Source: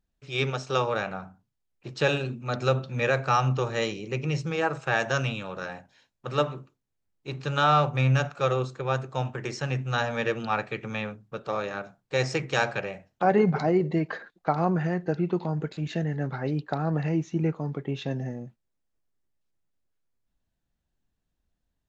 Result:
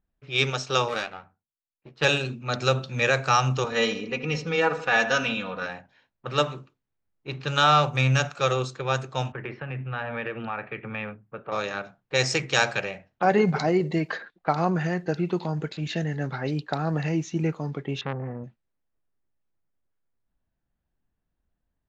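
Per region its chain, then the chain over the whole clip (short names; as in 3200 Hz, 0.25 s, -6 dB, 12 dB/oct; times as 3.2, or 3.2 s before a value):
0.88–2.05 power-law curve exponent 1.4 + doubler 13 ms -4.5 dB
3.64–5.66 air absorption 130 m + comb 4.1 ms, depth 77% + darkening echo 78 ms, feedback 47%, low-pass 2200 Hz, level -12 dB
9.32–11.52 LPF 2600 Hz 24 dB/oct + compressor 5:1, threshold -29 dBFS + three-band expander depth 40%
18.01–18.44 synth low-pass 1200 Hz, resonance Q 2.8 + low shelf 87 Hz +11 dB + core saturation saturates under 780 Hz
whole clip: low-pass opened by the level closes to 1500 Hz, open at -22.5 dBFS; high shelf 2300 Hz +11 dB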